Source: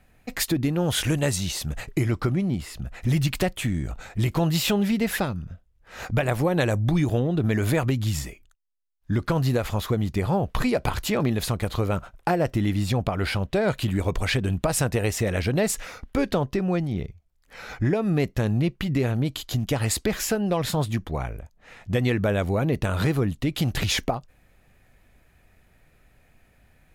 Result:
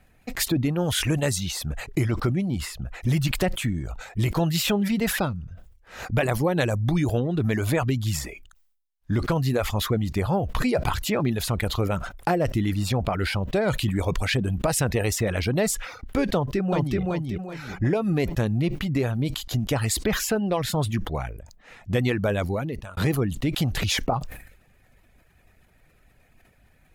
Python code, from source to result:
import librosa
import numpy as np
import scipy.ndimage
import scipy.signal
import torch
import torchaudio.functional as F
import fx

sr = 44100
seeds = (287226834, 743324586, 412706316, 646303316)

y = fx.echo_throw(x, sr, start_s=16.34, length_s=0.65, ms=380, feedback_pct=35, wet_db=-1.0)
y = fx.edit(y, sr, fx.fade_out_span(start_s=22.44, length_s=0.53), tone=tone)
y = fx.dereverb_blind(y, sr, rt60_s=0.55)
y = fx.sustainer(y, sr, db_per_s=73.0)